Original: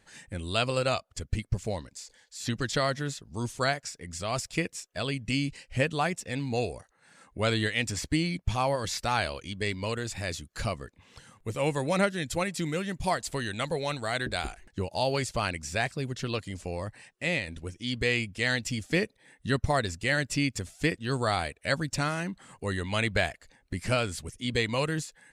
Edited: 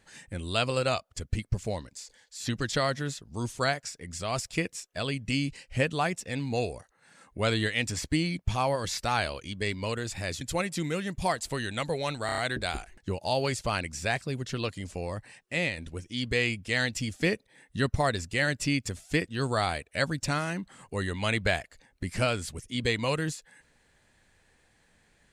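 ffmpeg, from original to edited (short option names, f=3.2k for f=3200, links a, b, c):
-filter_complex "[0:a]asplit=6[a][b][c][d][e][f];[a]atrim=end=10.412[g];[b]atrim=start=12.228:end=14.112[h];[c]atrim=start=14.078:end=14.112[i];[d]atrim=start=14.078:end=14.112[j];[e]atrim=start=14.078:end=14.112[k];[f]atrim=start=14.078[l];[g][h]acrossfade=d=0.004:c1=hsin:c2=hsin[m];[m][i]acrossfade=d=0.004:c1=hsin:c2=hsin[n];[n][j]acrossfade=d=0.004:c1=hsin:c2=hsin[o];[o][k]acrossfade=d=0.004:c1=hsin:c2=hsin[p];[p][l]acrossfade=d=0.004:c1=hsin:c2=hsin"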